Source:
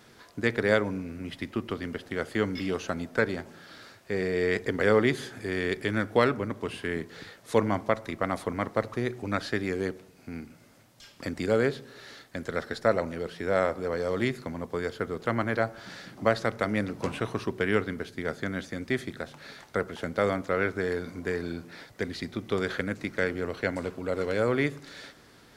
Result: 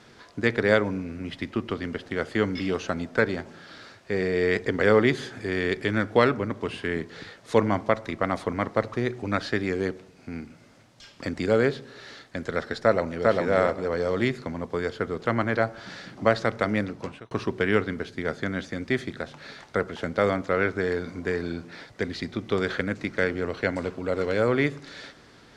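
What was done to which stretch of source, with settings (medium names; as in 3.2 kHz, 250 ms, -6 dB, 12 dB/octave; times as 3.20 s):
12.82–13.30 s: echo throw 400 ms, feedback 20%, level -1 dB
16.74–17.31 s: fade out
whole clip: low-pass 6.9 kHz 12 dB/octave; trim +3 dB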